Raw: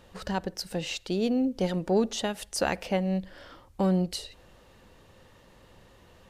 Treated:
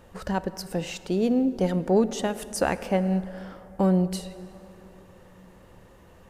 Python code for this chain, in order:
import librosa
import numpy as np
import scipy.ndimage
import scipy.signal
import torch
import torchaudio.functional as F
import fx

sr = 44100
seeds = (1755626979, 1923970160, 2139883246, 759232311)

y = fx.peak_eq(x, sr, hz=3900.0, db=-8.5, octaves=1.4)
y = fx.rev_plate(y, sr, seeds[0], rt60_s=3.8, hf_ratio=0.5, predelay_ms=0, drr_db=14.0)
y = y * 10.0 ** (3.5 / 20.0)